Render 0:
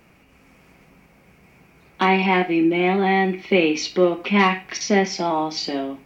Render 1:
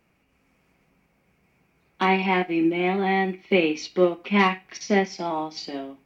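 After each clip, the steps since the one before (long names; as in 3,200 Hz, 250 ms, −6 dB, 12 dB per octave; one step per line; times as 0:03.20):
expander for the loud parts 1.5 to 1, over −35 dBFS
level −1.5 dB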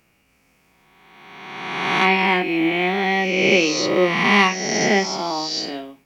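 peak hold with a rise ahead of every peak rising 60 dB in 1.68 s
high-shelf EQ 2,800 Hz +9.5 dB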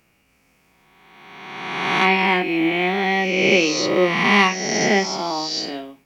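no processing that can be heard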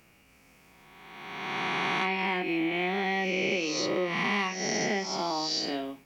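downward compressor 5 to 1, threshold −29 dBFS, peak gain reduction 16.5 dB
level +1.5 dB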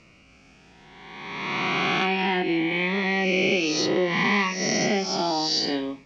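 low-pass filter 6,100 Hz 24 dB per octave
phaser whose notches keep moving one way rising 0.65 Hz
level +7.5 dB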